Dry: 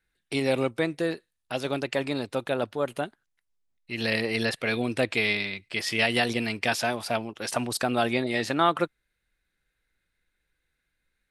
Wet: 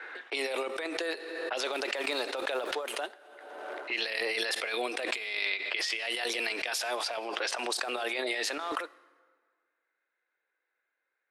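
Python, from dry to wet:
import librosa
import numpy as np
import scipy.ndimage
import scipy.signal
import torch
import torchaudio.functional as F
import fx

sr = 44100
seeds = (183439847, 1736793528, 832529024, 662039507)

y = fx.law_mismatch(x, sr, coded='mu', at=(1.64, 3.96))
y = fx.env_lowpass(y, sr, base_hz=1400.0, full_db=-23.0)
y = scipy.signal.sosfilt(scipy.signal.bessel(8, 620.0, 'highpass', norm='mag', fs=sr, output='sos'), y)
y = fx.over_compress(y, sr, threshold_db=-34.0, ratio=-1.0)
y = fx.rev_plate(y, sr, seeds[0], rt60_s=1.7, hf_ratio=0.65, predelay_ms=0, drr_db=18.5)
y = fx.pre_swell(y, sr, db_per_s=35.0)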